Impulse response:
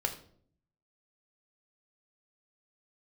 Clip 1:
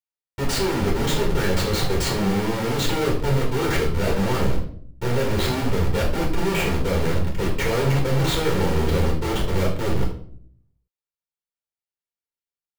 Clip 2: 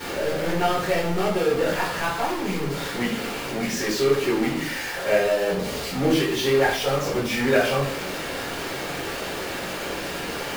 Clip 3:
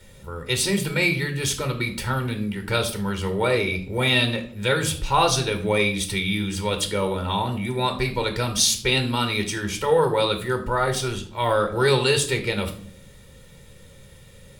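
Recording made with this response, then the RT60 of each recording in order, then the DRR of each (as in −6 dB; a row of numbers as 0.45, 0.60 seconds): 3; 0.55, 0.55, 0.55 seconds; −3.0, −10.0, 5.0 decibels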